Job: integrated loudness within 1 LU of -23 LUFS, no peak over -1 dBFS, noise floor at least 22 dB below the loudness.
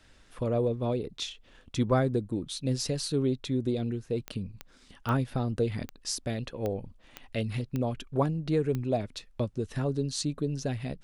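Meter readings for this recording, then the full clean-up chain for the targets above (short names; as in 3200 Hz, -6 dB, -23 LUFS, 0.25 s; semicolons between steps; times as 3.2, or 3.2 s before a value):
clicks 8; loudness -31.0 LUFS; peak -13.5 dBFS; loudness target -23.0 LUFS
-> de-click; gain +8 dB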